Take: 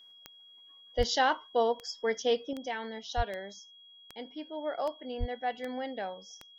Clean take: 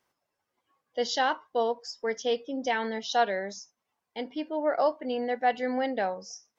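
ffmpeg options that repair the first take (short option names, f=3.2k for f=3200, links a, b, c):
-filter_complex "[0:a]adeclick=t=4,bandreject=f=3.3k:w=30,asplit=3[a][b][c];[a]afade=t=out:st=0.97:d=0.02[d];[b]highpass=f=140:w=0.5412,highpass=f=140:w=1.3066,afade=t=in:st=0.97:d=0.02,afade=t=out:st=1.09:d=0.02[e];[c]afade=t=in:st=1.09:d=0.02[f];[d][e][f]amix=inputs=3:normalize=0,asplit=3[g][h][i];[g]afade=t=out:st=3.16:d=0.02[j];[h]highpass=f=140:w=0.5412,highpass=f=140:w=1.3066,afade=t=in:st=3.16:d=0.02,afade=t=out:st=3.28:d=0.02[k];[i]afade=t=in:st=3.28:d=0.02[l];[j][k][l]amix=inputs=3:normalize=0,asplit=3[m][n][o];[m]afade=t=out:st=5.19:d=0.02[p];[n]highpass=f=140:w=0.5412,highpass=f=140:w=1.3066,afade=t=in:st=5.19:d=0.02,afade=t=out:st=5.31:d=0.02[q];[o]afade=t=in:st=5.31:d=0.02[r];[p][q][r]amix=inputs=3:normalize=0,asetnsamples=n=441:p=0,asendcmd='2.53 volume volume 8dB',volume=0dB"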